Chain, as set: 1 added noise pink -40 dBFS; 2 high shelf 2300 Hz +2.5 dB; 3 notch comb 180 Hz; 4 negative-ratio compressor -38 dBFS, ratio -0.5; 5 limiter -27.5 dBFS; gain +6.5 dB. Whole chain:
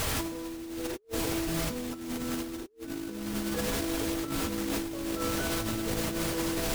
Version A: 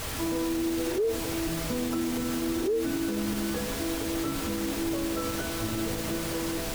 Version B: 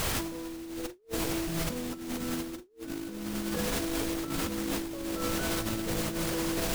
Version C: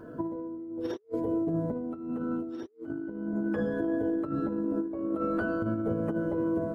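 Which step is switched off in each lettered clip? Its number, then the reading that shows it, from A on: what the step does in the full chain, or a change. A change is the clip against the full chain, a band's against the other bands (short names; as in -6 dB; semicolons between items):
4, crest factor change -3.0 dB; 3, momentary loudness spread change +1 LU; 1, 2 kHz band -5.5 dB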